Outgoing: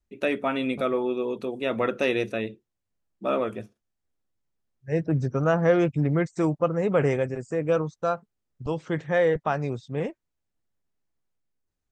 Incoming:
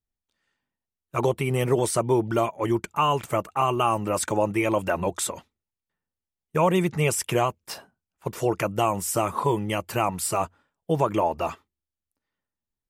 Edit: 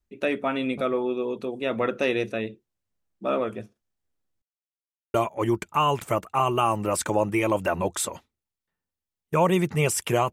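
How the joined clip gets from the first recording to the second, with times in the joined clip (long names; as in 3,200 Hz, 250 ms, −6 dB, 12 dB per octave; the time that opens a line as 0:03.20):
outgoing
0:04.42–0:05.14: silence
0:05.14: continue with incoming from 0:02.36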